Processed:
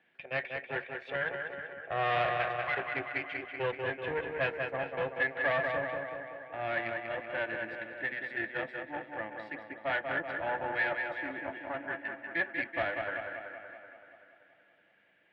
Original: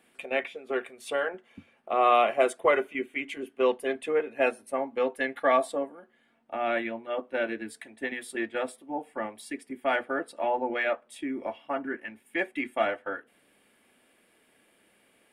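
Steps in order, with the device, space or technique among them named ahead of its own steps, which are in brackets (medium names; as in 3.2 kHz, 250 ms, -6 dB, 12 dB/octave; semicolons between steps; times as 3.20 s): 2.34–2.77 s: Chebyshev band-pass 1.4–4.8 kHz, order 2; analogue delay pedal into a guitar amplifier (bucket-brigade echo 190 ms, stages 4096, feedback 64%, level -5 dB; valve stage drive 21 dB, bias 0.75; cabinet simulation 83–3500 Hz, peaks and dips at 150 Hz +5 dB, 240 Hz -10 dB, 410 Hz -6 dB, 1.2 kHz -6 dB, 1.7 kHz +9 dB); modulated delay 443 ms, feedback 32%, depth 65 cents, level -19.5 dB; trim -2 dB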